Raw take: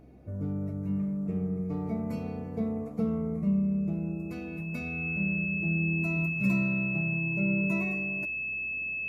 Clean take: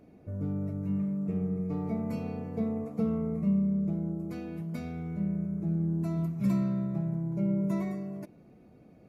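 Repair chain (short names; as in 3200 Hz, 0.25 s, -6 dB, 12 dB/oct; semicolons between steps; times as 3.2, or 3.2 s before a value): de-hum 64.5 Hz, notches 12; notch 2600 Hz, Q 30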